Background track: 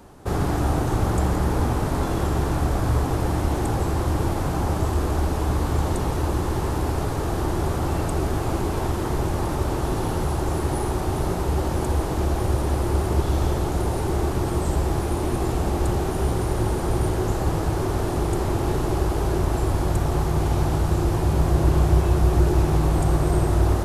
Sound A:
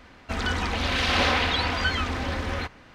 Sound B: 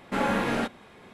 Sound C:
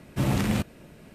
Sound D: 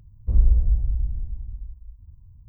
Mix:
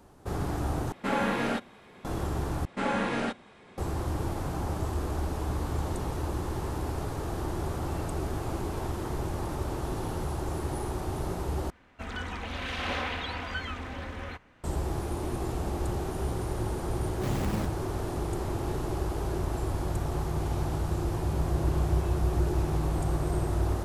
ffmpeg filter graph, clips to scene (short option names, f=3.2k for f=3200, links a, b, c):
-filter_complex "[2:a]asplit=2[a][b];[0:a]volume=-8.5dB[c];[b]aresample=22050,aresample=44100[d];[1:a]equalizer=f=4.8k:t=o:w=0.77:g=-7.5[e];[3:a]acrusher=samples=17:mix=1:aa=0.000001:lfo=1:lforange=17:lforate=2[f];[c]asplit=4[g][h][i][j];[g]atrim=end=0.924[k];[a]atrim=end=1.13,asetpts=PTS-STARTPTS,volume=-2dB[l];[h]atrim=start=2.046:end=2.654[m];[d]atrim=end=1.13,asetpts=PTS-STARTPTS,volume=-3dB[n];[i]atrim=start=3.776:end=11.704[o];[e]atrim=end=2.94,asetpts=PTS-STARTPTS,volume=-9dB[p];[j]atrim=start=14.636[q];[f]atrim=end=1.14,asetpts=PTS-STARTPTS,volume=-8dB,afade=t=in:d=0.004:c=hsin,afade=t=out:st=1.136:d=0.004:c=hsin,adelay=17040[r];[k][l]acrossfade=d=0.004:c1=hsin:c2=hsin[s];[s][m]acrossfade=d=0.004:c1=hsin:c2=hsin[t];[t][n]acrossfade=d=0.004:c1=hsin:c2=hsin[u];[u][o]acrossfade=d=0.004:c1=hsin:c2=hsin[v];[v][p]acrossfade=d=0.004:c1=hsin:c2=hsin[w];[w][q]acrossfade=d=0.004:c1=hsin:c2=hsin[x];[x][r]amix=inputs=2:normalize=0"